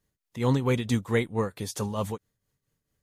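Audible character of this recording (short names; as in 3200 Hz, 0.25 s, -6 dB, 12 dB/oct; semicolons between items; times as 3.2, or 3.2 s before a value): tremolo triangle 4.5 Hz, depth 70%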